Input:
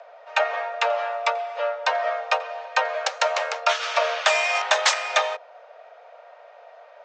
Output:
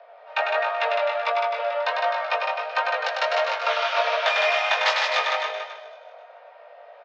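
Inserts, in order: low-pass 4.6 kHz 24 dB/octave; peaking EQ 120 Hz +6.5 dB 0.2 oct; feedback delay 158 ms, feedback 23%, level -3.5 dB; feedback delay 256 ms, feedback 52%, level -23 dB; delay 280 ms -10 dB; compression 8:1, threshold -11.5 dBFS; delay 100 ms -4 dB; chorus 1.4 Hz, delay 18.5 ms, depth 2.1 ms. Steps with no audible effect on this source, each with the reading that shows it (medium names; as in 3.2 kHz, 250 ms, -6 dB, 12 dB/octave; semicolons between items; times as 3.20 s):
peaking EQ 120 Hz: input has nothing below 400 Hz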